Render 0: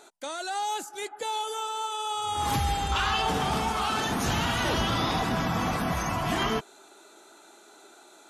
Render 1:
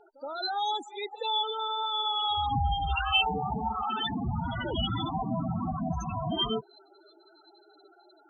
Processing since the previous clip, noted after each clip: loudest bins only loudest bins 8; high-order bell 3.5 kHz +10 dB 1.1 oct; pre-echo 73 ms -18 dB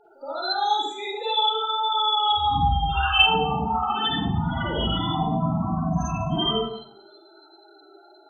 Schroeder reverb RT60 0.65 s, DRR -5.5 dB

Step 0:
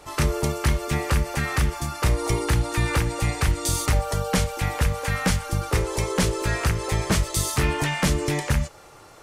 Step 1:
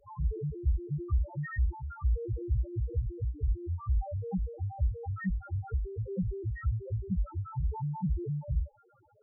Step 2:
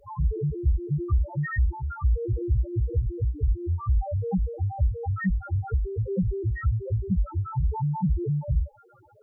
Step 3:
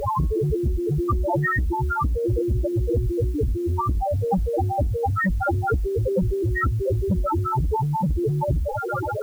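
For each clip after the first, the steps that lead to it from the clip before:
treble shelf 3.6 kHz -9.5 dB; loudest bins only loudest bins 1
de-hum 364.5 Hz, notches 3; compression 1.5:1, threshold -32 dBFS, peak gain reduction 4 dB; trim +8.5 dB
spectrum-flattening compressor 4:1; trim +3.5 dB

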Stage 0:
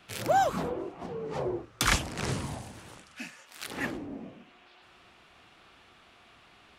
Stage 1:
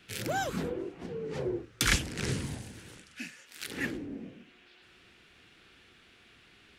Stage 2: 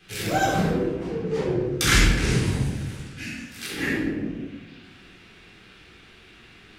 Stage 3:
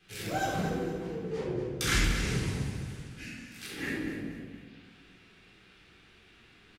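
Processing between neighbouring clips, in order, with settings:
high-order bell 850 Hz -10 dB 1.3 oct
simulated room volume 610 m³, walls mixed, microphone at 3.8 m
feedback delay 232 ms, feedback 38%, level -9.5 dB; trim -9 dB

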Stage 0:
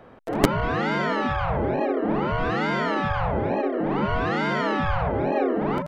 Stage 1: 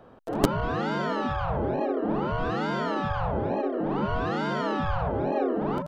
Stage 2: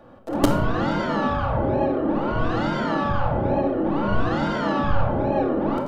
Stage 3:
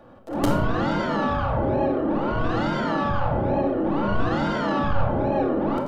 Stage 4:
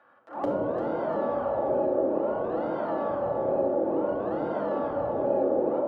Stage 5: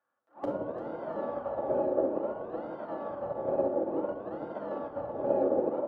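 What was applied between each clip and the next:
peaking EQ 2.1 kHz -9.5 dB 0.5 oct; trim -3 dB
simulated room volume 1900 m³, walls furnished, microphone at 2.4 m; trim +1.5 dB
transient shaper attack -6 dB, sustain -1 dB
echo whose repeats swap between lows and highs 172 ms, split 820 Hz, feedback 65%, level -3 dB; auto-wah 510–1600 Hz, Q 2.1, down, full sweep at -17 dBFS
upward expansion 2.5:1, over -38 dBFS

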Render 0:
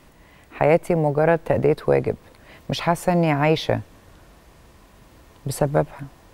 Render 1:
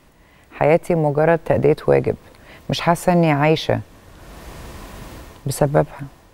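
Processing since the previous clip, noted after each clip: level rider gain up to 15.5 dB; trim -1 dB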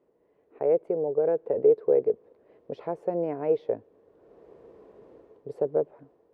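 band-pass filter 440 Hz, Q 5.4; trim -2 dB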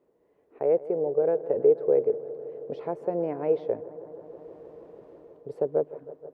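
bucket-brigade echo 159 ms, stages 2048, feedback 85%, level -17.5 dB

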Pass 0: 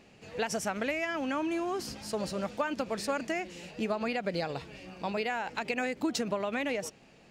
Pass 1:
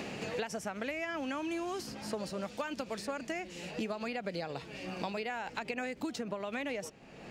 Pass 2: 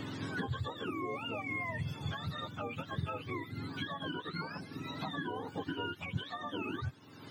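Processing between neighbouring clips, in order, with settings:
three bands compressed up and down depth 100%; trim -5.5 dB
spectrum inverted on a logarithmic axis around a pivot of 850 Hz

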